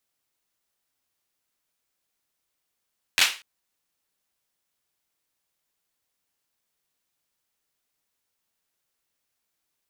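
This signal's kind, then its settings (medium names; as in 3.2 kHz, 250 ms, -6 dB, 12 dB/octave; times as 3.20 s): hand clap length 0.24 s, apart 11 ms, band 2.6 kHz, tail 0.32 s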